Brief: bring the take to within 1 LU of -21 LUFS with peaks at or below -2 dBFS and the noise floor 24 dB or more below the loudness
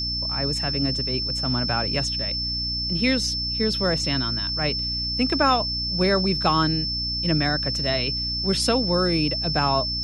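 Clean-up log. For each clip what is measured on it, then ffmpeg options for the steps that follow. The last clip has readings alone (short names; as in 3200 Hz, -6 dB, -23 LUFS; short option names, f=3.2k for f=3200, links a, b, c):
hum 60 Hz; harmonics up to 300 Hz; hum level -31 dBFS; steady tone 5300 Hz; tone level -25 dBFS; loudness -22.0 LUFS; peak -7.0 dBFS; loudness target -21.0 LUFS
-> -af "bandreject=f=60:t=h:w=6,bandreject=f=120:t=h:w=6,bandreject=f=180:t=h:w=6,bandreject=f=240:t=h:w=6,bandreject=f=300:t=h:w=6"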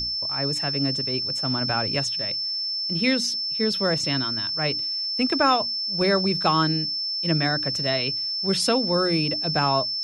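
hum none; steady tone 5300 Hz; tone level -25 dBFS
-> -af "bandreject=f=5.3k:w=30"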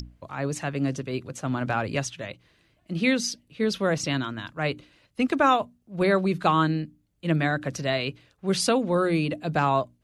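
steady tone none; loudness -26.0 LUFS; peak -8.0 dBFS; loudness target -21.0 LUFS
-> -af "volume=5dB"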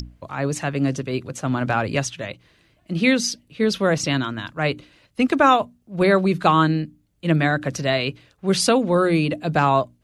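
loudness -21.0 LUFS; peak -3.0 dBFS; noise floor -63 dBFS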